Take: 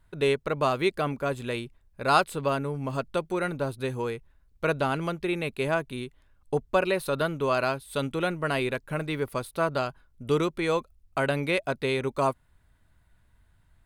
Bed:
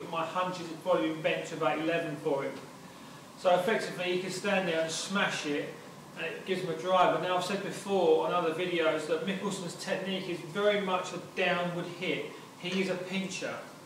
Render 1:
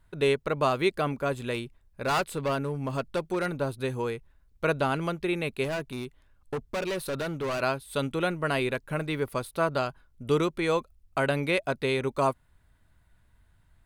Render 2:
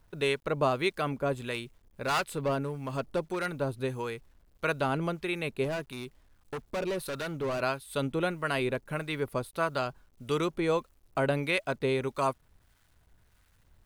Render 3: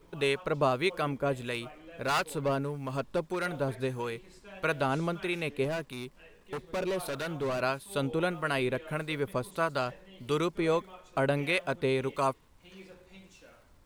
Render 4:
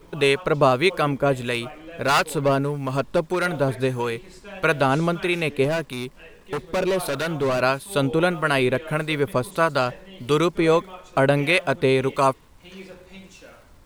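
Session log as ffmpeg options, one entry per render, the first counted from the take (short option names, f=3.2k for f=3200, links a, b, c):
-filter_complex "[0:a]asettb=1/sr,asplit=3[a][b][c];[a]atrim=end=1.534[d];[b]atrim=start=1.53:end=3.46,asetpts=PTS-STARTPTS,afade=t=in:d=0.004:c=qsin,afade=t=out:st=1.926:d=0.004:c=qsin,volume=22.5dB,asoftclip=hard,volume=-22.5dB[e];[c]atrim=start=3.456[f];[d][e]acrossfade=d=0.004:c1=hsin:c2=qsin[g];[g][f]acrossfade=d=0.004:c1=qsin:c2=hsin,asettb=1/sr,asplit=3[h][i][j];[h]atrim=end=5.644[k];[i]atrim=start=5.64:end=7.61,asetpts=PTS-STARTPTS,afade=t=in:d=0.004:c=qsin,afade=t=out:st=1.966:d=0.004:c=qsin,asoftclip=type=hard:threshold=-27.5dB[l];[j]atrim=start=7.606[m];[k][l]acrossfade=d=0.004:c1=hsin:c2=qsin[n];[n][m]acrossfade=d=0.004:c1=qsin:c2=hsin"
-filter_complex "[0:a]acrusher=bits=10:mix=0:aa=0.000001,acrossover=split=960[a][b];[a]aeval=exprs='val(0)*(1-0.5/2+0.5/2*cos(2*PI*1.6*n/s))':c=same[c];[b]aeval=exprs='val(0)*(1-0.5/2-0.5/2*cos(2*PI*1.6*n/s))':c=same[d];[c][d]amix=inputs=2:normalize=0"
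-filter_complex "[1:a]volume=-19.5dB[a];[0:a][a]amix=inputs=2:normalize=0"
-af "volume=9.5dB"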